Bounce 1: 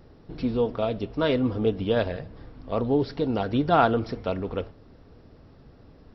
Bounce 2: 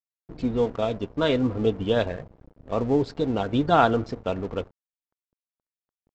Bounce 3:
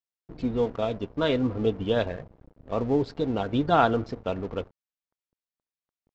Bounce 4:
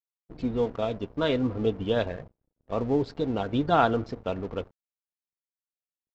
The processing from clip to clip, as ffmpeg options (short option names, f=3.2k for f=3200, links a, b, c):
-af "afftdn=nr=24:nf=-44,bass=f=250:g=0,treble=f=4k:g=6,aresample=16000,aeval=exprs='sgn(val(0))*max(abs(val(0))-0.00708,0)':c=same,aresample=44100,volume=1.5dB"
-af "lowpass=6.5k,volume=-2dB"
-af "agate=range=-25dB:threshold=-44dB:ratio=16:detection=peak,volume=-1dB"